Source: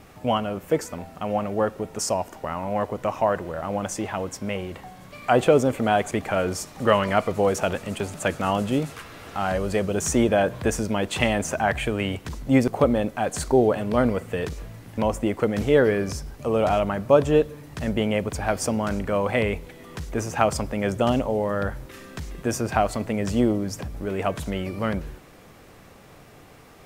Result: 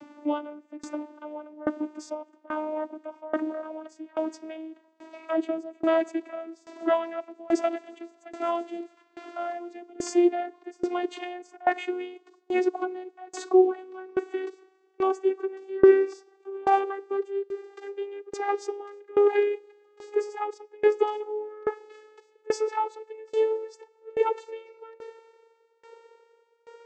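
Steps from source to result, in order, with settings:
vocoder with a gliding carrier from D4, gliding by +8 semitones
tremolo with a ramp in dB decaying 1.2 Hz, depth 25 dB
level +5 dB

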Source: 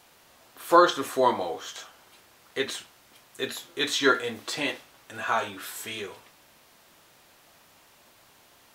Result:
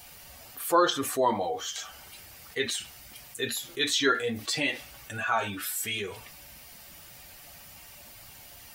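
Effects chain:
spectral dynamics exaggerated over time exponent 1.5
envelope flattener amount 50%
level −4.5 dB

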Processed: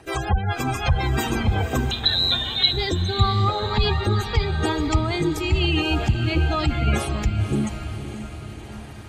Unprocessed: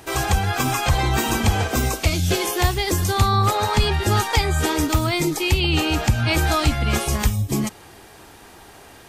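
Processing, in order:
gate on every frequency bin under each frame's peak −20 dB strong
rotating-speaker cabinet horn 5.5 Hz, later 1 Hz, at 0:03.04
0:01.91–0:02.73: voice inversion scrambler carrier 4,000 Hz
feedback delay with all-pass diffusion 532 ms, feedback 60%, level −10.5 dB

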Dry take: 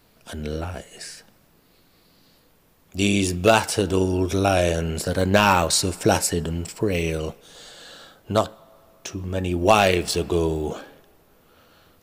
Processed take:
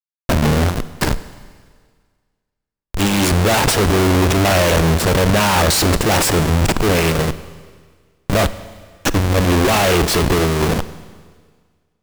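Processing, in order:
comparator with hysteresis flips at −31 dBFS
harmonic generator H 8 −9 dB, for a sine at −17.5 dBFS
four-comb reverb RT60 1.7 s, combs from 33 ms, DRR 14.5 dB
level +7 dB

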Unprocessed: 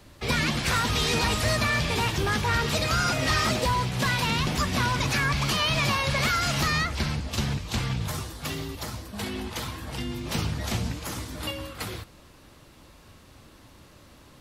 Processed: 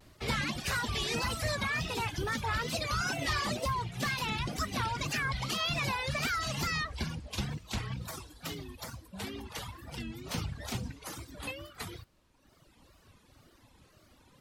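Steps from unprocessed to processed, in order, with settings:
tape wow and flutter 140 cents
reverb reduction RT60 1.5 s
level −6 dB

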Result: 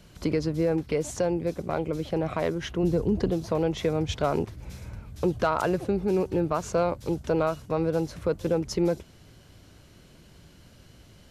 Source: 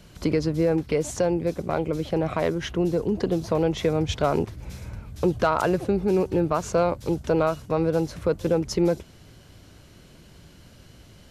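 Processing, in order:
0:02.83–0:03.31: low-shelf EQ 150 Hz +11 dB
level −3 dB

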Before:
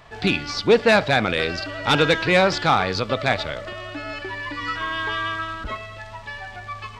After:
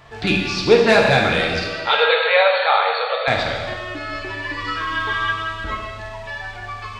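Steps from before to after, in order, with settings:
0:01.68–0:03.28: linear-phase brick-wall band-pass 430–4,500 Hz
reverb whose tail is shaped and stops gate 470 ms falling, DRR −1 dB

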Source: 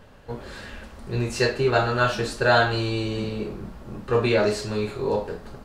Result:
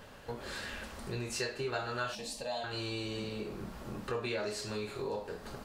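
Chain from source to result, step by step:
spectral tilt +1.5 dB per octave
downward compressor 3 to 1, threshold −38 dBFS, peak gain reduction 17.5 dB
0:02.15–0:02.64: phaser with its sweep stopped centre 380 Hz, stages 6

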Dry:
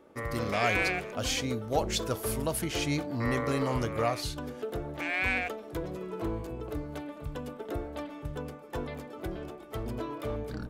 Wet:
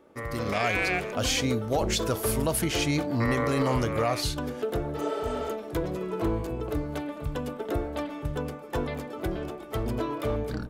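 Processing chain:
brickwall limiter −22.5 dBFS, peak gain reduction 8 dB
healed spectral selection 0:04.98–0:05.49, 370–5,800 Hz after
automatic gain control gain up to 6 dB

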